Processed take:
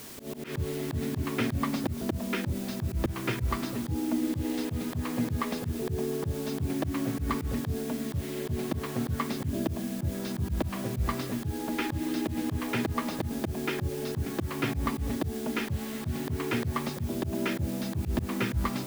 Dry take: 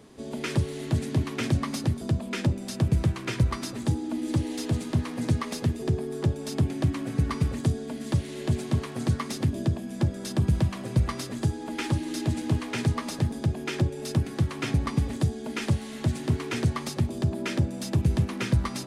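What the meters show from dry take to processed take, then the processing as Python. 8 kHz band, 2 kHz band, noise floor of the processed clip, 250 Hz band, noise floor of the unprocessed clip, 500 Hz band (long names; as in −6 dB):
−3.0 dB, 0.0 dB, −37 dBFS, −1.5 dB, −38 dBFS, 0.0 dB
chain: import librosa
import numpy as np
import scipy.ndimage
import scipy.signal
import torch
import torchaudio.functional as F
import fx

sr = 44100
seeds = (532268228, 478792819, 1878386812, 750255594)

y = fx.air_absorb(x, sr, metres=210.0)
y = fx.quant_dither(y, sr, seeds[0], bits=8, dither='triangular')
y = fx.auto_swell(y, sr, attack_ms=120.0)
y = F.gain(torch.from_numpy(y), 2.5).numpy()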